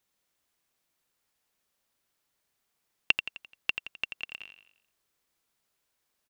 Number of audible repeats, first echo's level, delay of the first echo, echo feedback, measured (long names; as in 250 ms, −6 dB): 4, −8.5 dB, 86 ms, 46%